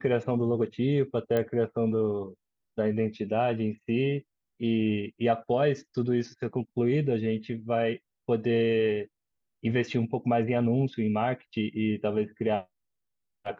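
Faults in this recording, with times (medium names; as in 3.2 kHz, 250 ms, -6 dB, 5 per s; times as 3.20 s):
1.37 s: pop -16 dBFS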